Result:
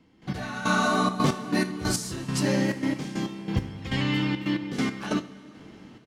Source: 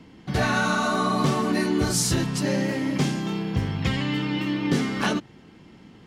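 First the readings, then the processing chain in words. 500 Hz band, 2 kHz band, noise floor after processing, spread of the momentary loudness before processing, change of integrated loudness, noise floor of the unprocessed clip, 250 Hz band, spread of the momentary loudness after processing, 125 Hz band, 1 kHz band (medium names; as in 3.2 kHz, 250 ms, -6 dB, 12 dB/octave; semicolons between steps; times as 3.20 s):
-3.5 dB, -2.5 dB, -54 dBFS, 5 LU, -3.0 dB, -50 dBFS, -2.5 dB, 10 LU, -3.5 dB, -2.5 dB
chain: trance gate "..x...xxxx.x..x" 138 bpm -12 dB; on a send: delay 76 ms -20.5 dB; on the sum: two-slope reverb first 0.24 s, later 3.8 s, from -18 dB, DRR 9.5 dB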